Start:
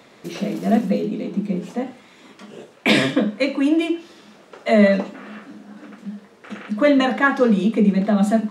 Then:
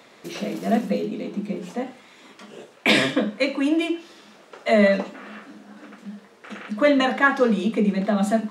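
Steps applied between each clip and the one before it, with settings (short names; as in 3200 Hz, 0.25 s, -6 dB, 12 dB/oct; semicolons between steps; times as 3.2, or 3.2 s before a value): low shelf 330 Hz -6.5 dB; notches 60/120/180 Hz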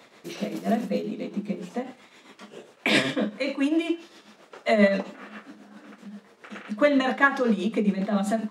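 tremolo triangle 7.5 Hz, depth 65%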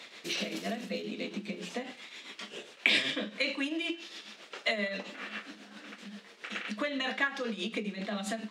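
compressor 6:1, threshold -29 dBFS, peak gain reduction 15 dB; weighting filter D; gain -2.5 dB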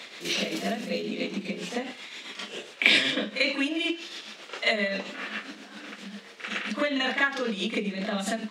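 reverse echo 41 ms -8.5 dB; gain +5.5 dB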